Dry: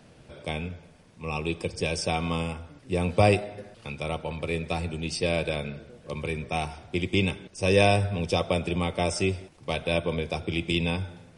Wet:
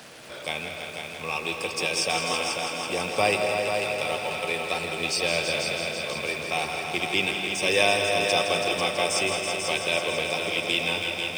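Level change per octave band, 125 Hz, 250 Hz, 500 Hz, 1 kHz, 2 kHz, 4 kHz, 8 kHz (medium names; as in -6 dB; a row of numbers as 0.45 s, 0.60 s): -11.5 dB, -5.5 dB, +0.5 dB, +3.5 dB, +6.5 dB, +8.0 dB, +9.0 dB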